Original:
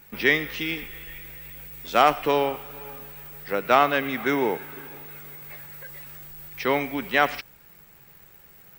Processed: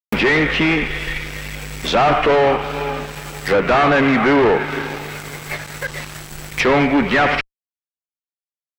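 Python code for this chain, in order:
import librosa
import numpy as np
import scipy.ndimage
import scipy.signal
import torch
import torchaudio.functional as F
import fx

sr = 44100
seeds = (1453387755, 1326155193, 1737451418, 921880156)

y = fx.fuzz(x, sr, gain_db=41.0, gate_db=-39.0)
y = fx.env_lowpass_down(y, sr, base_hz=2400.0, full_db=-14.0)
y = y * librosa.db_to_amplitude(2.0)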